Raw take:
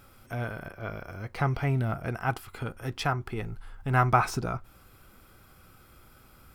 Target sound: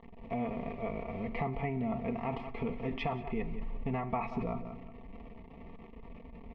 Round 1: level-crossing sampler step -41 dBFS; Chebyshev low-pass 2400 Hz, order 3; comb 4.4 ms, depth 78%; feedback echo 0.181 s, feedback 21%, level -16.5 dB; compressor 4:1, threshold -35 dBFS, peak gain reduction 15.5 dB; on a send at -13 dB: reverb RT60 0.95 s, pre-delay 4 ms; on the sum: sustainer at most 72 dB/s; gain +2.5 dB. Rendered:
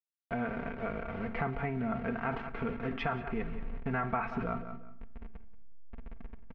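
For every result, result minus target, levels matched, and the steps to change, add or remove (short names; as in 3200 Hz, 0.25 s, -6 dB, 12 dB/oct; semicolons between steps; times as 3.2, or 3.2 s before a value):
2000 Hz band +5.0 dB; level-crossing sampler: distortion +6 dB
add after compressor: Butterworth band-stop 1500 Hz, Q 2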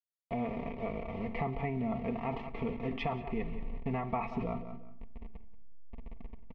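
level-crossing sampler: distortion +6 dB
change: level-crossing sampler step -47 dBFS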